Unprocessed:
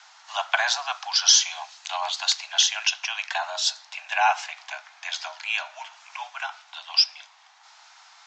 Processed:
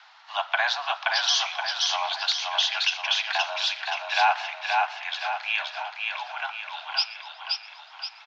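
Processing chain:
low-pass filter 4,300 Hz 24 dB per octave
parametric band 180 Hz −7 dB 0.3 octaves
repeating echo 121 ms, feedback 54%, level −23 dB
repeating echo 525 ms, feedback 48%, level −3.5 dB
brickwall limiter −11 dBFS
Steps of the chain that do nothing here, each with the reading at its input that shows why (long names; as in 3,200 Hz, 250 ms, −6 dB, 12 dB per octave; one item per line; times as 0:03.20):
parametric band 180 Hz: nothing at its input below 570 Hz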